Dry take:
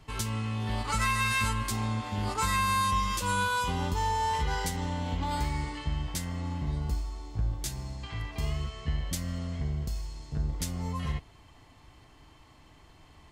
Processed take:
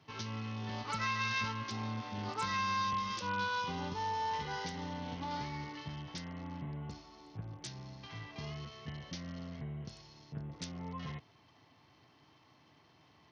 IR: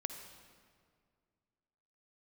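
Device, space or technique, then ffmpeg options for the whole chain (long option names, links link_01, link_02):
Bluetooth headset: -af "highpass=frequency=110:width=0.5412,highpass=frequency=110:width=1.3066,aresample=16000,aresample=44100,volume=-6.5dB" -ar 48000 -c:a sbc -b:a 64k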